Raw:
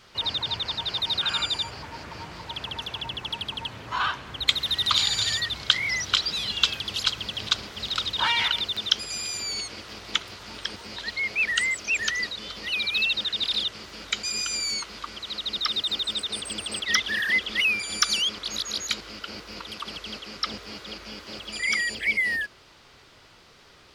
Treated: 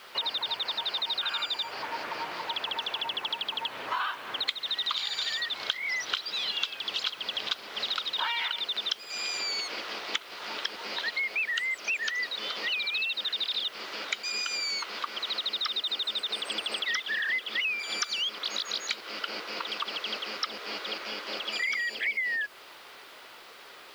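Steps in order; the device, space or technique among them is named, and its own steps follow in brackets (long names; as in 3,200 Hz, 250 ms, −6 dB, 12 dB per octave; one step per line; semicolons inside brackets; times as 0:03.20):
baby monitor (band-pass filter 450–4,100 Hz; downward compressor, threshold −35 dBFS, peak gain reduction 18.5 dB; white noise bed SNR 28 dB)
level +6.5 dB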